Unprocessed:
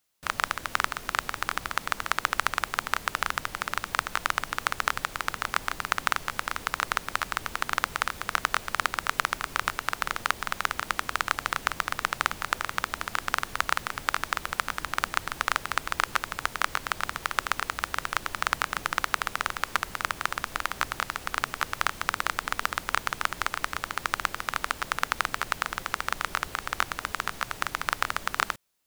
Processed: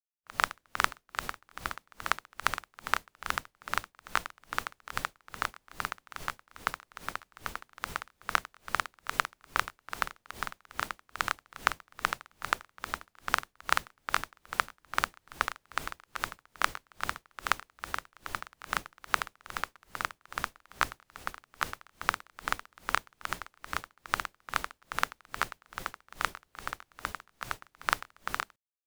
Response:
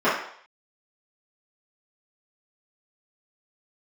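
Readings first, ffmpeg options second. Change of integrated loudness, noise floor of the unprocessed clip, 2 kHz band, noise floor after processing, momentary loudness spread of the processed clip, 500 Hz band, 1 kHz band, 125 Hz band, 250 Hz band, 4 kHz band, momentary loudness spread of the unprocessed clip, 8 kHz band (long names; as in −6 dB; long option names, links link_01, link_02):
−6.0 dB, −44 dBFS, −6.0 dB, −77 dBFS, 8 LU, −5.5 dB, −5.5 dB, −6.0 dB, −6.0 dB, −7.0 dB, 3 LU, −7.0 dB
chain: -af "agate=range=-33dB:threshold=-32dB:ratio=3:detection=peak,aeval=exprs='val(0)*pow(10,-34*(0.5-0.5*cos(2*PI*2.4*n/s))/20)':channel_layout=same,volume=1.5dB"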